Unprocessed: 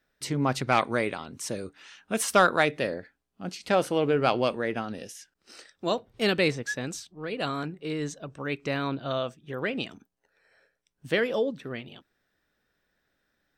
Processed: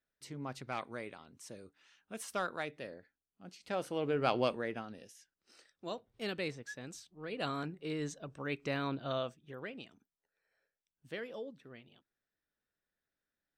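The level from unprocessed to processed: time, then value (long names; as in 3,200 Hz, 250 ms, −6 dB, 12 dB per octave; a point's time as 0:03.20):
0:03.47 −16.5 dB
0:04.43 −5.5 dB
0:05.02 −14 dB
0:06.79 −14 dB
0:07.46 −6.5 dB
0:09.21 −6.5 dB
0:09.82 −17 dB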